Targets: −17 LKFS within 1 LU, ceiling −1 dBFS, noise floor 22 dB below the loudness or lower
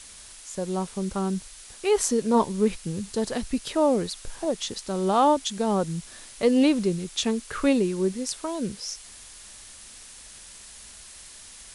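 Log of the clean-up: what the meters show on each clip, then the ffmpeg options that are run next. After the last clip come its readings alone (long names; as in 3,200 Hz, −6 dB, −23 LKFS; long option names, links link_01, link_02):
background noise floor −46 dBFS; target noise floor −48 dBFS; integrated loudness −25.5 LKFS; sample peak −8.5 dBFS; target loudness −17.0 LKFS
→ -af "afftdn=noise_reduction=6:noise_floor=-46"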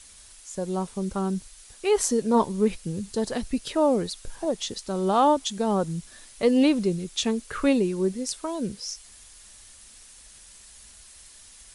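background noise floor −50 dBFS; integrated loudness −25.5 LKFS; sample peak −8.5 dBFS; target loudness −17.0 LKFS
→ -af "volume=8.5dB,alimiter=limit=-1dB:level=0:latency=1"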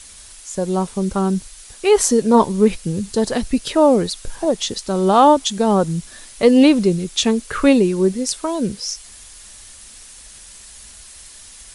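integrated loudness −17.5 LKFS; sample peak −1.0 dBFS; background noise floor −41 dBFS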